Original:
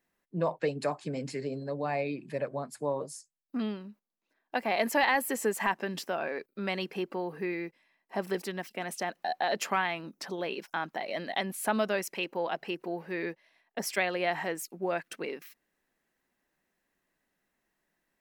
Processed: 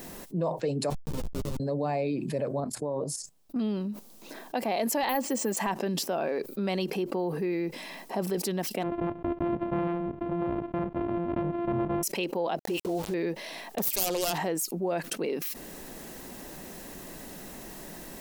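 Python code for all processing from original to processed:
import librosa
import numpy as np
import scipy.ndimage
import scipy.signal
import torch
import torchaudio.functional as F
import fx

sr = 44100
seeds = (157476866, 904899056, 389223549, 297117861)

y = fx.chain(x, sr, fx.cvsd(bps=16000),
    fx.schmitt(flips_db=-31.5),
    fx.ensemble(), at=(0.9, 1.6))
y = fx.chain(y, sr, fx.high_shelf(hz=3500.0, db=-9.5),
    fx.level_steps(step_db=13), at=(2.6, 3.56))
y = fx.chain(y, sr, fx.comb(ms=3.6, depth=0.44),
    fx.resample_bad(factor=3, down='filtered', up='hold'), at=(5.09, 5.57))
y = fx.chain(y, sr, fx.sample_sort(block=128),
    fx.bessel_lowpass(hz=1400.0, order=6), at=(8.83, 12.03))
y = fx.chain(y, sr, fx.dispersion(late='highs', ms=53.0, hz=810.0),
    fx.sample_gate(floor_db=-44.5), at=(12.59, 13.14))
y = fx.chain(y, sr, fx.self_delay(depth_ms=0.66),
    fx.peak_eq(hz=15000.0, db=14.5, octaves=0.44), at=(13.78, 14.38))
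y = fx.peak_eq(y, sr, hz=1800.0, db=-11.5, octaves=1.7)
y = fx.env_flatten(y, sr, amount_pct=70)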